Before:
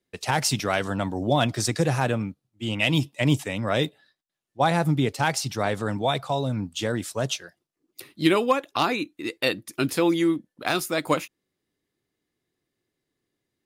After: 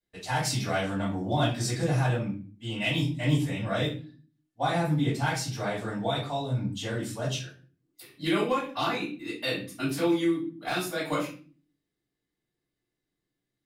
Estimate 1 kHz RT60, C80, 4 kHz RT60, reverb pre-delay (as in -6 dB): 0.35 s, 11.5 dB, 0.35 s, 3 ms